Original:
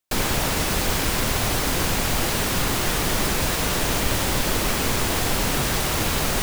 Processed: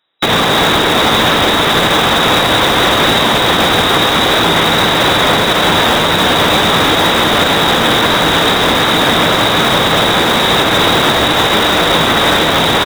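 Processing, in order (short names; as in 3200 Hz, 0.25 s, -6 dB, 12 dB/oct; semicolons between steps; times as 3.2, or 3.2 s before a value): brick-wall FIR low-pass 7800 Hz; speed mistake 15 ips tape played at 7.5 ips; HPF 480 Hz 6 dB/oct; resonant high shelf 3700 Hz +9.5 dB, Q 3; in parallel at -10 dB: wrapped overs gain 24.5 dB; on the sum: echo 0.63 s -6.5 dB; on a send at -21.5 dB: reverb RT60 1.0 s, pre-delay 3 ms; on the sum: maximiser +18 dB; gain -1 dB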